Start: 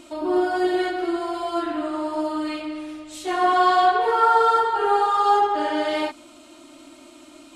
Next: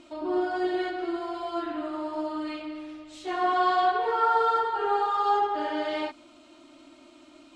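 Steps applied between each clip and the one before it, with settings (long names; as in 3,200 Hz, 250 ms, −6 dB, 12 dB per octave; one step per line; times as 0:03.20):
low-pass filter 5,500 Hz 12 dB per octave
level −6 dB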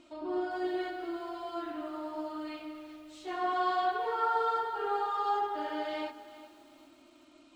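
feedback echo at a low word length 395 ms, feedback 35%, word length 8 bits, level −15 dB
level −6.5 dB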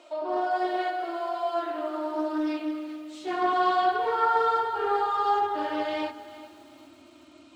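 high-pass filter sweep 590 Hz → 84 Hz, 0:01.46–0:04.51
highs frequency-modulated by the lows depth 0.15 ms
level +6 dB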